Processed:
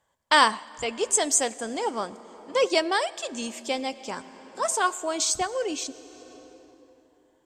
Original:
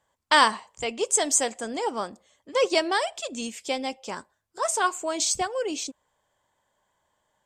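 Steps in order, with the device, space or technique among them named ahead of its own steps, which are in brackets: compressed reverb return (on a send at -7 dB: reverb RT60 2.7 s, pre-delay 89 ms + compressor 10:1, threshold -35 dBFS, peak gain reduction 18.5 dB)

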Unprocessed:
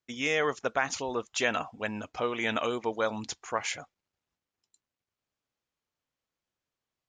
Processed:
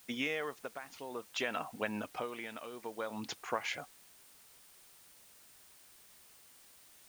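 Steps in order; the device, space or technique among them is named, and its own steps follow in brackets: medium wave at night (BPF 140–4000 Hz; compressor, threshold -32 dBFS, peak gain reduction 10.5 dB; tremolo 0.57 Hz, depth 73%; whine 9000 Hz -69 dBFS; white noise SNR 18 dB); gain +1.5 dB

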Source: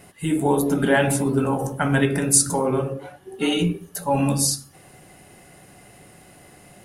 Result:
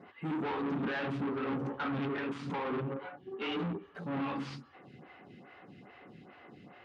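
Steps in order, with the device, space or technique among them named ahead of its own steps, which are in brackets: vibe pedal into a guitar amplifier (photocell phaser 2.4 Hz; tube stage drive 33 dB, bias 0.4; speaker cabinet 110–3500 Hz, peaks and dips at 240 Hz +5 dB, 620 Hz -6 dB, 1200 Hz +4 dB)

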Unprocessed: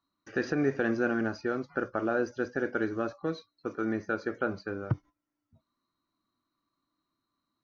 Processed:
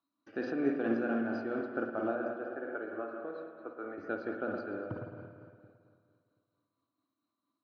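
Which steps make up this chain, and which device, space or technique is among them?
2.15–3.98 three-band isolator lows -13 dB, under 440 Hz, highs -18 dB, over 2200 Hz; combo amplifier with spring reverb and tremolo (spring tank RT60 2.2 s, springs 52/56 ms, chirp 70 ms, DRR 1.5 dB; tremolo 4.4 Hz, depth 35%; speaker cabinet 110–4400 Hz, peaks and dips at 140 Hz -8 dB, 290 Hz +6 dB, 650 Hz +6 dB, 1900 Hz -6 dB); gain -5.5 dB

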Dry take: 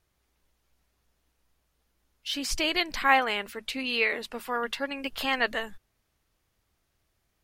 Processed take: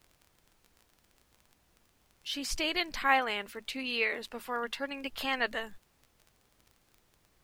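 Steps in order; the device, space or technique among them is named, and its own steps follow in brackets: vinyl LP (crackle 24/s -39 dBFS; pink noise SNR 33 dB); gain -4.5 dB

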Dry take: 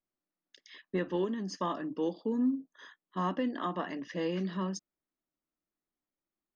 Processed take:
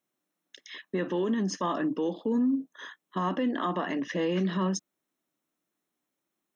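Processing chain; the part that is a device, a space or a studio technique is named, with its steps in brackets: PA system with an anti-feedback notch (HPF 130 Hz; Butterworth band-stop 4700 Hz, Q 6.9; limiter -29.5 dBFS, peak gain reduction 8.5 dB); gain +9 dB

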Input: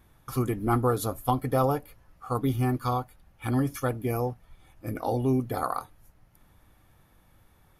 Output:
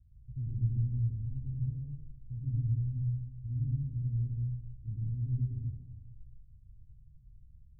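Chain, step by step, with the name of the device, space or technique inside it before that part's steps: club heard from the street (limiter -22.5 dBFS, peak gain reduction 11.5 dB; LPF 130 Hz 24 dB/oct; reverb RT60 0.90 s, pre-delay 0.101 s, DRR -2.5 dB)

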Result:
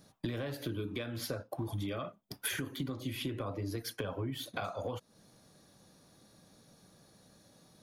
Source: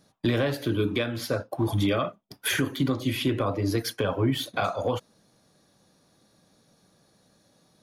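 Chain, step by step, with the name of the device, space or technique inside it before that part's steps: ASMR close-microphone chain (low shelf 150 Hz +4 dB; compressor 4:1, threshold -37 dBFS, peak gain reduction 15.5 dB; high shelf 11000 Hz +6 dB)

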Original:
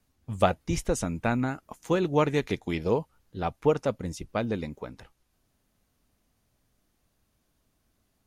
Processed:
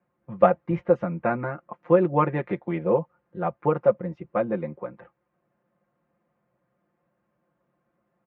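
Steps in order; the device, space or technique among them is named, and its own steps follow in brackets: bass cabinet (speaker cabinet 89–2000 Hz, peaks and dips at 110 Hz -6 dB, 550 Hz +8 dB, 1100 Hz +4 dB); comb 5.7 ms, depth 87%; gain -1 dB

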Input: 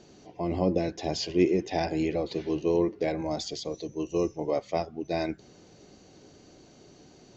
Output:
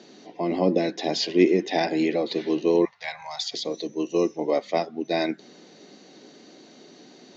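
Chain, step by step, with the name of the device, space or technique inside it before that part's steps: 2.85–3.54 Chebyshev band-stop 110–850 Hz, order 3; television speaker (speaker cabinet 190–6700 Hz, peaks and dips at 240 Hz +3 dB, 1900 Hz +6 dB, 3800 Hz +7 dB); gain +4.5 dB

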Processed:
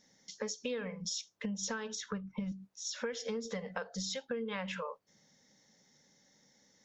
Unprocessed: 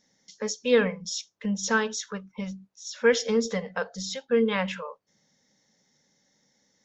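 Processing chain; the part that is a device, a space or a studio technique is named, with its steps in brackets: 1.95–2.52 tone controls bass +10 dB, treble -8 dB; serial compression, peaks first (compressor 5:1, threshold -30 dBFS, peak gain reduction 13.5 dB; compressor 2.5:1, threshold -38 dBFS, peak gain reduction 8 dB); gain +1 dB

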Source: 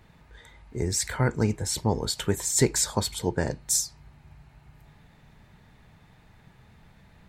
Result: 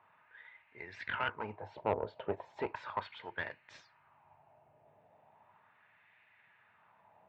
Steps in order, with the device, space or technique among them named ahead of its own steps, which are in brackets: wah-wah guitar rig (wah 0.36 Hz 580–2000 Hz, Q 2.5; tube stage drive 28 dB, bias 0.7; speaker cabinet 84–3500 Hz, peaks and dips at 100 Hz +10 dB, 630 Hz +6 dB, 970 Hz +5 dB, 2700 Hz +7 dB); gain +3 dB

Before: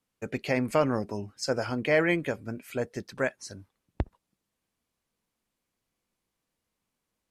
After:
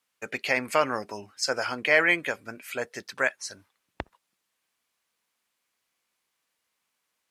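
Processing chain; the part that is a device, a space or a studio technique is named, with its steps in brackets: filter by subtraction (in parallel: LPF 1700 Hz 12 dB/oct + phase invert); on the sum: low shelf 68 Hz +11 dB; gain +5.5 dB

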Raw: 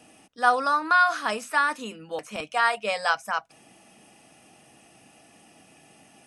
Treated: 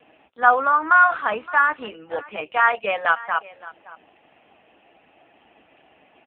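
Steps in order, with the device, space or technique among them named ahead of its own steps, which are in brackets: 0.79–2.44 HPF 54 Hz 12 dB/oct; satellite phone (BPF 330–3100 Hz; echo 0.568 s -19.5 dB; gain +6 dB; AMR-NB 5.9 kbps 8000 Hz)

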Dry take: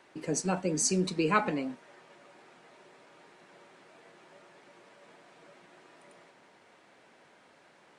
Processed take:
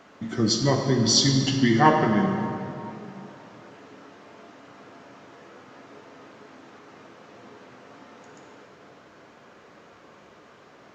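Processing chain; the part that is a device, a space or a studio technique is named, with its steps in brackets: slowed and reverbed (varispeed -27%; reverb RT60 2.7 s, pre-delay 6 ms, DRR 3 dB); gain +7.5 dB

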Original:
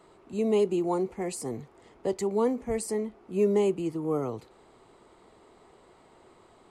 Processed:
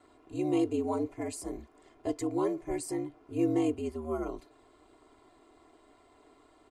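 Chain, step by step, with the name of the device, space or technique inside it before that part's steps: ring-modulated robot voice (ring modulator 78 Hz; comb 2.9 ms, depth 77%); gain -3 dB

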